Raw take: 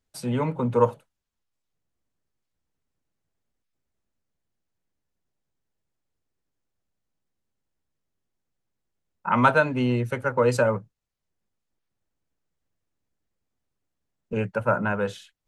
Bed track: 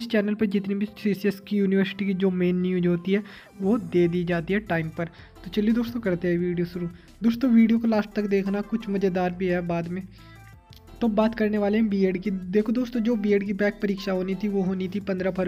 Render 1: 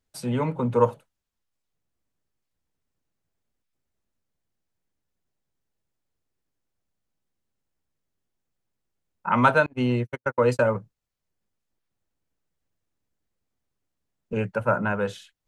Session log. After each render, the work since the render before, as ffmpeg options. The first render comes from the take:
ffmpeg -i in.wav -filter_complex "[0:a]asettb=1/sr,asplit=3[link_01][link_02][link_03];[link_01]atrim=end=9.664[link_04];[link_02]atrim=start=9.66:end=10.75,asetpts=PTS-STARTPTS,afade=type=in:duration=0.004:curve=qsin,afade=type=out:start_time=1.086:duration=0.004:curve=qsin,agate=range=-55dB:threshold=-26dB:ratio=16:release=100:detection=peak[link_05];[link_03]atrim=start=10.746[link_06];[link_04][link_05]acrossfade=duration=0.004:curve1=hsin:curve2=qsin[link_07];[link_07][link_06]acrossfade=duration=0.004:curve1=qsin:curve2=hsin" out.wav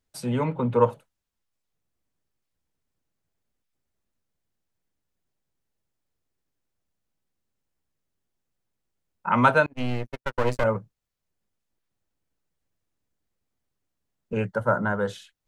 ffmpeg -i in.wav -filter_complex "[0:a]asettb=1/sr,asplit=3[link_01][link_02][link_03];[link_01]atrim=end=0.444[link_04];[link_02]atrim=start=0.44:end=0.9,asetpts=PTS-STARTPTS,afade=type=in:duration=0.004:curve=qsin,afade=type=out:start_time=0.456:duration=0.004:curve=qsin,highshelf=frequency=4700:width_type=q:width=1.5:gain=-7[link_05];[link_03]atrim=start=0.896[link_06];[link_04][link_05]acrossfade=duration=0.004:curve1=hsin:curve2=qsin[link_07];[link_07][link_06]acrossfade=duration=0.004:curve1=qsin:curve2=hsin,asettb=1/sr,asplit=3[link_08][link_09][link_10];[link_08]atrim=end=9.734[link_11];[link_09]atrim=start=9.73:end=10.64,asetpts=PTS-STARTPTS,afade=type=in:duration=0.004:curve=qsin,afade=type=out:start_time=0.906:duration=0.004:curve=qsin,aeval=exprs='max(val(0),0)':channel_layout=same[link_12];[link_10]atrim=start=10.636[link_13];[link_11][link_12]acrossfade=duration=0.004:curve1=hsin:curve2=qsin[link_14];[link_14][link_13]acrossfade=duration=0.004:curve1=qsin:curve2=hsin,asettb=1/sr,asplit=3[link_15][link_16][link_17];[link_15]atrim=end=14.474[link_18];[link_16]atrim=start=14.47:end=15.1,asetpts=PTS-STARTPTS,afade=type=in:duration=0.004:curve=qsin,afade=type=out:start_time=0.626:duration=0.004:curve=qsin,asuperstop=centerf=2500:order=4:qfactor=2.8[link_19];[link_17]atrim=start=15.096[link_20];[link_18][link_19]acrossfade=duration=0.004:curve1=hsin:curve2=qsin[link_21];[link_21][link_20]acrossfade=duration=0.004:curve1=qsin:curve2=hsin" out.wav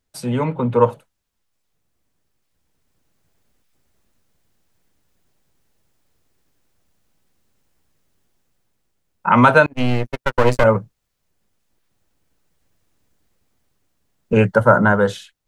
ffmpeg -i in.wav -af "dynaudnorm=framelen=820:gausssize=3:maxgain=11.5dB,alimiter=level_in=4.5dB:limit=-1dB:release=50:level=0:latency=1" out.wav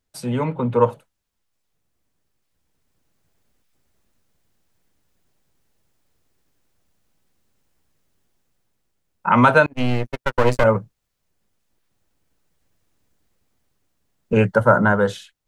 ffmpeg -i in.wav -af "volume=-2dB" out.wav

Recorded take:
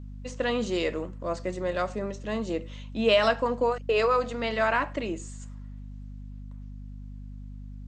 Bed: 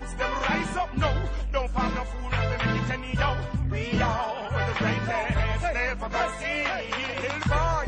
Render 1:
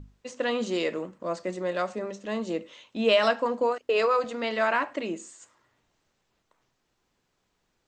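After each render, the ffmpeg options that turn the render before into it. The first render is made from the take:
ffmpeg -i in.wav -af "bandreject=frequency=50:width_type=h:width=6,bandreject=frequency=100:width_type=h:width=6,bandreject=frequency=150:width_type=h:width=6,bandreject=frequency=200:width_type=h:width=6,bandreject=frequency=250:width_type=h:width=6" out.wav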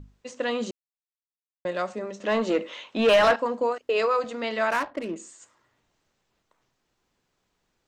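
ffmpeg -i in.wav -filter_complex "[0:a]asettb=1/sr,asplit=3[link_01][link_02][link_03];[link_01]atrim=end=2.204[link_04];[link_02]atrim=start=2.2:end=3.36,asetpts=PTS-STARTPTS,afade=type=in:duration=0.004:curve=qsin,afade=type=out:start_time=1.156:duration=0.004:curve=qsin,asplit=2[link_05][link_06];[link_06]highpass=frequency=720:poles=1,volume=20dB,asoftclip=type=tanh:threshold=-10.5dB[link_07];[link_05][link_07]amix=inputs=2:normalize=0,lowpass=frequency=1900:poles=1,volume=-6dB[link_08];[link_03]atrim=start=3.356[link_09];[link_04][link_08]acrossfade=duration=0.004:curve1=hsin:curve2=qsin[link_10];[link_10][link_09]acrossfade=duration=0.004:curve1=qsin:curve2=hsin,asettb=1/sr,asplit=3[link_11][link_12][link_13];[link_11]atrim=end=4.704[link_14];[link_12]atrim=start=4.7:end=5.16,asetpts=PTS-STARTPTS,afade=type=in:duration=0.004:curve=qsin,afade=type=out:start_time=0.456:duration=0.004:curve=qsin,adynamicsmooth=sensitivity=5.5:basefreq=810[link_15];[link_13]atrim=start=5.156[link_16];[link_14][link_15]acrossfade=duration=0.004:curve1=hsin:curve2=qsin[link_17];[link_17][link_16]acrossfade=duration=0.004:curve1=qsin:curve2=hsin,asplit=3[link_18][link_19][link_20];[link_18]atrim=end=0.71,asetpts=PTS-STARTPTS,afade=type=out:start_time=0.706:duration=0.004:curve=hsin[link_21];[link_19]atrim=start=0.71:end=1.65,asetpts=PTS-STARTPTS,volume=0[link_22];[link_20]atrim=start=1.65,asetpts=PTS-STARTPTS,afade=type=in:duration=0.004:curve=hsin[link_23];[link_21][link_22][link_23]concat=n=3:v=0:a=1" out.wav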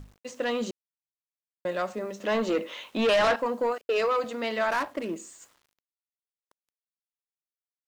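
ffmpeg -i in.wav -af "asoftclip=type=tanh:threshold=-18.5dB,acrusher=bits=9:mix=0:aa=0.000001" out.wav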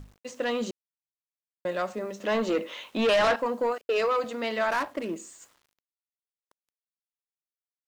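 ffmpeg -i in.wav -af anull out.wav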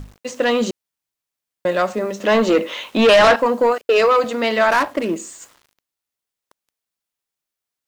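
ffmpeg -i in.wav -af "volume=11dB" out.wav

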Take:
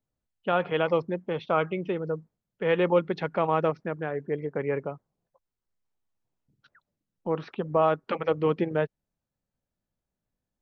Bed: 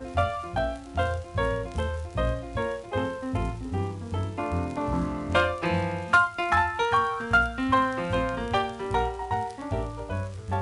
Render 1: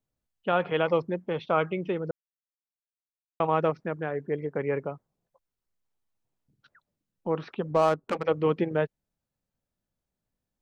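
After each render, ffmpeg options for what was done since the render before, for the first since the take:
ffmpeg -i in.wav -filter_complex "[0:a]asettb=1/sr,asplit=3[link_01][link_02][link_03];[link_01]atrim=end=7.714[link_04];[link_02]atrim=start=7.71:end=8.25,asetpts=PTS-STARTPTS,afade=type=in:duration=0.004:curve=qsin,afade=type=out:start_time=0.536:duration=0.004:curve=qsin,adynamicsmooth=sensitivity=3.5:basefreq=940[link_05];[link_03]atrim=start=8.246[link_06];[link_04][link_05]acrossfade=duration=0.004:curve1=hsin:curve2=qsin[link_07];[link_07][link_06]acrossfade=duration=0.004:curve1=qsin:curve2=hsin,asplit=3[link_08][link_09][link_10];[link_08]atrim=end=2.11,asetpts=PTS-STARTPTS,afade=type=out:start_time=2.106:duration=0.004:curve=hsin[link_11];[link_09]atrim=start=2.11:end=3.4,asetpts=PTS-STARTPTS,volume=0[link_12];[link_10]atrim=start=3.4,asetpts=PTS-STARTPTS,afade=type=in:duration=0.004:curve=hsin[link_13];[link_11][link_12][link_13]concat=n=3:v=0:a=1" out.wav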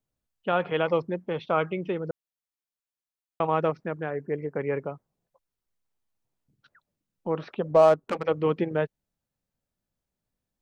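ffmpeg -i in.wav -filter_complex "[0:a]asettb=1/sr,asplit=3[link_01][link_02][link_03];[link_01]atrim=end=4.104[link_04];[link_02]atrim=start=4.1:end=4.61,asetpts=PTS-STARTPTS,afade=type=in:duration=0.004:curve=qsin,afade=type=out:start_time=0.506:duration=0.004:curve=qsin,asuperstop=centerf=3500:order=4:qfactor=3.3[link_05];[link_03]atrim=start=4.606[link_06];[link_04][link_05]acrossfade=duration=0.004:curve1=hsin:curve2=qsin[link_07];[link_07][link_06]acrossfade=duration=0.004:curve1=qsin:curve2=hsin,asettb=1/sr,asplit=3[link_08][link_09][link_10];[link_08]atrim=end=7.384[link_11];[link_09]atrim=start=7.38:end=7.94,asetpts=PTS-STARTPTS,afade=type=in:duration=0.004:curve=qsin,afade=type=out:start_time=0.556:duration=0.004:curve=qsin,equalizer=frequency=600:width_type=o:width=0.53:gain=8[link_12];[link_10]atrim=start=7.936[link_13];[link_11][link_12]acrossfade=duration=0.004:curve1=hsin:curve2=qsin[link_14];[link_14][link_13]acrossfade=duration=0.004:curve1=qsin:curve2=hsin" out.wav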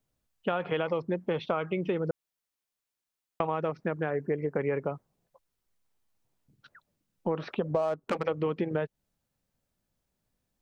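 ffmpeg -i in.wav -filter_complex "[0:a]asplit=2[link_01][link_02];[link_02]alimiter=limit=-18.5dB:level=0:latency=1:release=27,volume=-3dB[link_03];[link_01][link_03]amix=inputs=2:normalize=0,acompressor=threshold=-25dB:ratio=10" out.wav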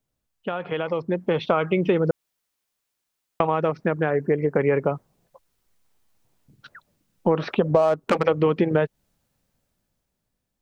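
ffmpeg -i in.wav -af "dynaudnorm=framelen=210:gausssize=11:maxgain=10dB" out.wav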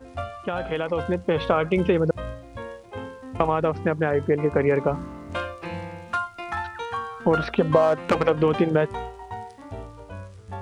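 ffmpeg -i in.wav -i bed.wav -filter_complex "[1:a]volume=-7dB[link_01];[0:a][link_01]amix=inputs=2:normalize=0" out.wav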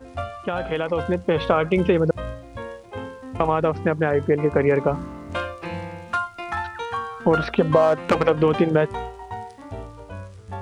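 ffmpeg -i in.wav -af "volume=2dB,alimiter=limit=-3dB:level=0:latency=1" out.wav

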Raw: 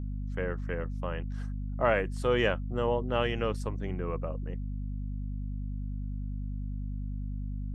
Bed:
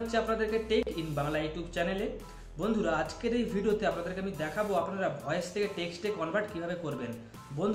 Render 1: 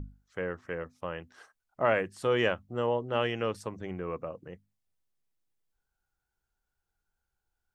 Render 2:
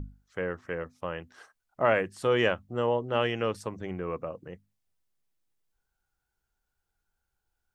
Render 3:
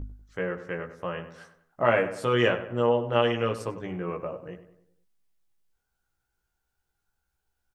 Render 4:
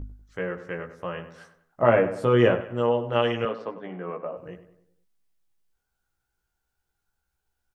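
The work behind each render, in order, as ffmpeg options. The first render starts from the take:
ffmpeg -i in.wav -af "bandreject=frequency=50:width_type=h:width=6,bandreject=frequency=100:width_type=h:width=6,bandreject=frequency=150:width_type=h:width=6,bandreject=frequency=200:width_type=h:width=6,bandreject=frequency=250:width_type=h:width=6" out.wav
ffmpeg -i in.wav -af "volume=2dB" out.wav
ffmpeg -i in.wav -filter_complex "[0:a]asplit=2[link_01][link_02];[link_02]adelay=17,volume=-3dB[link_03];[link_01][link_03]amix=inputs=2:normalize=0,asplit=2[link_04][link_05];[link_05]adelay=97,lowpass=frequency=2400:poles=1,volume=-11.5dB,asplit=2[link_06][link_07];[link_07]adelay=97,lowpass=frequency=2400:poles=1,volume=0.48,asplit=2[link_08][link_09];[link_09]adelay=97,lowpass=frequency=2400:poles=1,volume=0.48,asplit=2[link_10][link_11];[link_11]adelay=97,lowpass=frequency=2400:poles=1,volume=0.48,asplit=2[link_12][link_13];[link_13]adelay=97,lowpass=frequency=2400:poles=1,volume=0.48[link_14];[link_04][link_06][link_08][link_10][link_12][link_14]amix=inputs=6:normalize=0" out.wav
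ffmpeg -i in.wav -filter_complex "[0:a]asettb=1/sr,asplit=3[link_01][link_02][link_03];[link_01]atrim=end=1.824[link_04];[link_02]atrim=start=1.82:end=2.61,asetpts=PTS-STARTPTS,afade=type=in:duration=0.004:curve=qsin,afade=type=out:start_time=0.786:duration=0.004:curve=qsin,tiltshelf=frequency=1400:gain=6[link_05];[link_03]atrim=start=2.606[link_06];[link_04][link_05]acrossfade=duration=0.004:curve1=hsin:curve2=qsin[link_07];[link_07][link_06]acrossfade=duration=0.004:curve1=qsin:curve2=hsin,asettb=1/sr,asplit=3[link_08][link_09][link_10];[link_08]atrim=end=3.454[link_11];[link_09]atrim=start=3.45:end=4.37,asetpts=PTS-STARTPTS,afade=type=in:duration=0.004:curve=qsin,afade=type=out:start_time=0.916:duration=0.004:curve=qsin,highpass=frequency=190:width=0.5412,highpass=frequency=190:width=1.3066,equalizer=frequency=340:width_type=q:width=4:gain=-5,equalizer=frequency=680:width_type=q:width=4:gain=4,equalizer=frequency=2500:width_type=q:width=4:gain=-7,lowpass=frequency=3700:width=0.5412,lowpass=frequency=3700:width=1.3066[link_12];[link_10]atrim=start=4.366[link_13];[link_11][link_12]acrossfade=duration=0.004:curve1=hsin:curve2=qsin[link_14];[link_14][link_13]acrossfade=duration=0.004:curve1=qsin:curve2=hsin" out.wav

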